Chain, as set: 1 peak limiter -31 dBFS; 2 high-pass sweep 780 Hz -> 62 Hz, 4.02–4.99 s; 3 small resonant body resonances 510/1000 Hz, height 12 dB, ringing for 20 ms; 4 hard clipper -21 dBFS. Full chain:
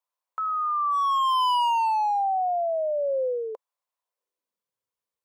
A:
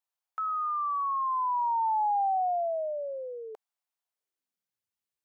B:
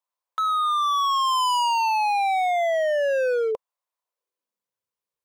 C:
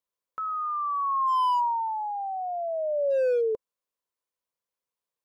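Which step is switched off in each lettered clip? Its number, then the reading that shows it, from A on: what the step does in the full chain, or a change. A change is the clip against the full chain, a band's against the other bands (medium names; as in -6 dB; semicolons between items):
3, crest factor change +2.5 dB; 1, mean gain reduction 8.0 dB; 2, 4 kHz band -11.0 dB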